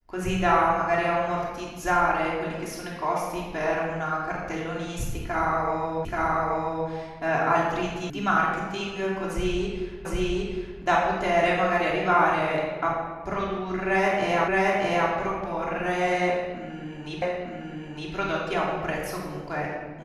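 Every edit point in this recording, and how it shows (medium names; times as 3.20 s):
6.05 s: repeat of the last 0.83 s
8.10 s: sound stops dead
10.05 s: repeat of the last 0.76 s
14.48 s: repeat of the last 0.62 s
17.22 s: repeat of the last 0.91 s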